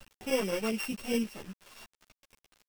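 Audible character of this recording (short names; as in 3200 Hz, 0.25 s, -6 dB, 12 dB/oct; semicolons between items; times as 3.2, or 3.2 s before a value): a buzz of ramps at a fixed pitch in blocks of 16 samples; chopped level 9.7 Hz, depth 65%, duty 90%; a quantiser's noise floor 8-bit, dither none; a shimmering, thickened sound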